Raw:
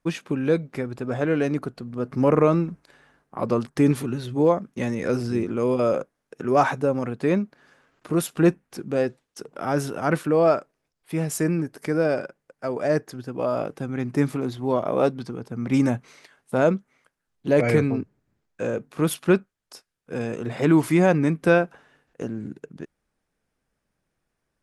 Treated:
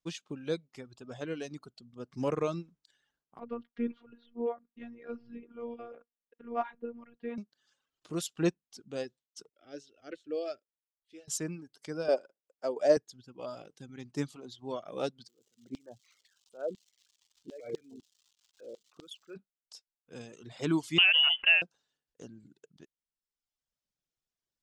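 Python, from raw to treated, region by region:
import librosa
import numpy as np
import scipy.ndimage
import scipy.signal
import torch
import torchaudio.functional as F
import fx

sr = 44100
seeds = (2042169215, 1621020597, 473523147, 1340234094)

y = fx.chain(x, sr, fx.robotise(hz=236.0),
    fx.lowpass(hz=2300.0, slope=24), at=(3.39, 7.38))
y = fx.chain(y, sr, fx.lowpass(hz=4800.0, slope=12),
    fx.fixed_phaser(hz=400.0, stages=4),
    fx.upward_expand(threshold_db=-37.0, expansion=1.5), at=(9.49, 11.28))
y = fx.chain(y, sr, fx.cheby1_highpass(hz=260.0, order=2),
    fx.peak_eq(hz=580.0, db=9.5, octaves=1.5), at=(12.08, 12.97))
y = fx.envelope_sharpen(y, sr, power=2.0, at=(15.27, 19.35), fade=0.02)
y = fx.filter_lfo_bandpass(y, sr, shape='saw_down', hz=4.0, low_hz=420.0, high_hz=4200.0, q=0.81, at=(15.27, 19.35), fade=0.02)
y = fx.dmg_crackle(y, sr, seeds[0], per_s=390.0, level_db=-43.0, at=(15.27, 19.35), fade=0.02)
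y = fx.chain(y, sr, fx.highpass(hz=480.0, slope=12),
    fx.freq_invert(carrier_hz=3200),
    fx.env_flatten(amount_pct=70), at=(20.98, 21.62))
y = fx.band_shelf(y, sr, hz=4800.0, db=12.5, octaves=1.7)
y = fx.dereverb_blind(y, sr, rt60_s=1.1)
y = fx.upward_expand(y, sr, threshold_db=-29.0, expansion=1.5)
y = F.gain(torch.from_numpy(y), -8.0).numpy()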